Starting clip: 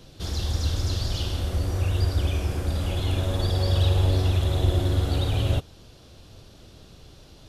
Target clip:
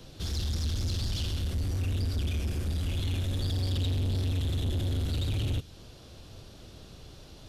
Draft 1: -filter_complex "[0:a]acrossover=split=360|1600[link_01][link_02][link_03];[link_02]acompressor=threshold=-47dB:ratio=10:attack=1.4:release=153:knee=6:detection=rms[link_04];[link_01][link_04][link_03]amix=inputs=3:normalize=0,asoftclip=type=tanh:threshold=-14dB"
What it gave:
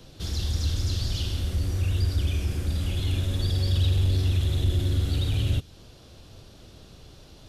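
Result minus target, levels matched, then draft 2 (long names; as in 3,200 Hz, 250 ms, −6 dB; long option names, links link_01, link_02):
soft clipping: distortion −13 dB
-filter_complex "[0:a]acrossover=split=360|1600[link_01][link_02][link_03];[link_02]acompressor=threshold=-47dB:ratio=10:attack=1.4:release=153:knee=6:detection=rms[link_04];[link_01][link_04][link_03]amix=inputs=3:normalize=0,asoftclip=type=tanh:threshold=-26dB"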